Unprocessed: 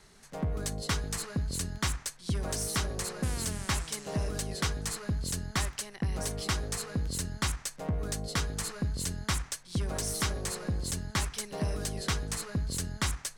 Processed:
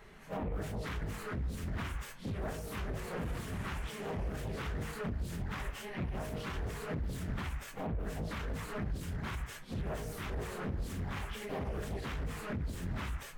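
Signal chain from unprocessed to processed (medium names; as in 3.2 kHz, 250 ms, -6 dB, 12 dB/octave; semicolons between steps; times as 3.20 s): phase randomisation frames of 100 ms; compression, threshold -32 dBFS, peak gain reduction 8.5 dB; peak limiter -33 dBFS, peak gain reduction 10.5 dB; high-order bell 6.4 kHz -14 dB; loudspeaker Doppler distortion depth 0.64 ms; trim +4.5 dB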